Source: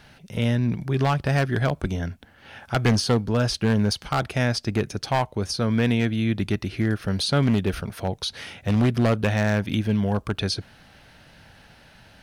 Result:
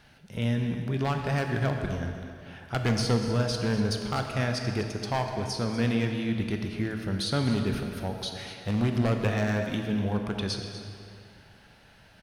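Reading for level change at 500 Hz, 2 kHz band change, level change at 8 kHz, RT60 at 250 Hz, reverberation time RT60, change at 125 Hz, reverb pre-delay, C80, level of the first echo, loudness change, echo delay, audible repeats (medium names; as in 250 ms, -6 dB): -4.5 dB, -5.0 dB, -5.0 dB, 2.3 s, 2.4 s, -5.0 dB, 14 ms, 5.0 dB, -12.5 dB, -5.0 dB, 245 ms, 1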